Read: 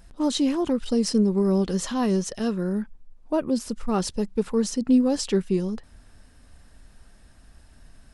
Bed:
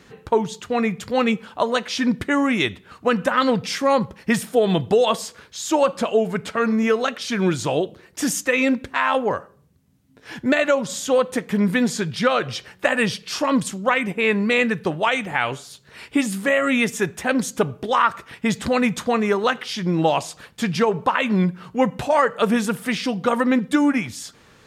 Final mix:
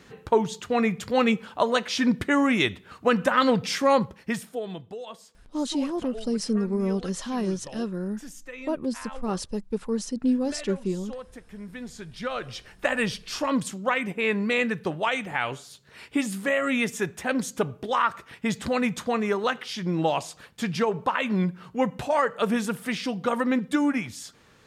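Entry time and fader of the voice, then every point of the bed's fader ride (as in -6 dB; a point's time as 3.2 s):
5.35 s, -4.5 dB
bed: 3.96 s -2 dB
4.94 s -21 dB
11.66 s -21 dB
12.77 s -5.5 dB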